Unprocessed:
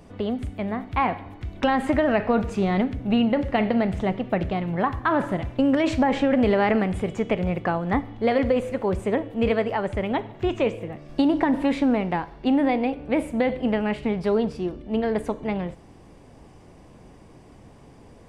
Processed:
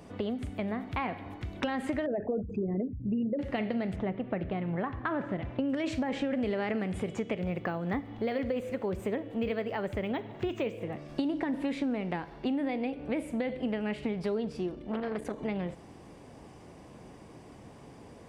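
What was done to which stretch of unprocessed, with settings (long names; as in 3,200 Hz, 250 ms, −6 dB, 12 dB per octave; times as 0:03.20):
0:02.06–0:03.39: spectral envelope exaggerated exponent 3
0:03.95–0:05.68: low-pass filter 2,100 Hz → 3,200 Hz
0:07.40–0:10.82: linearly interpolated sample-rate reduction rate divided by 2×
0:14.75–0:15.38: saturating transformer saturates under 700 Hz
whole clip: high-pass filter 110 Hz 6 dB per octave; dynamic equaliser 940 Hz, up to −6 dB, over −36 dBFS, Q 1.3; downward compressor 3 to 1, threshold −31 dBFS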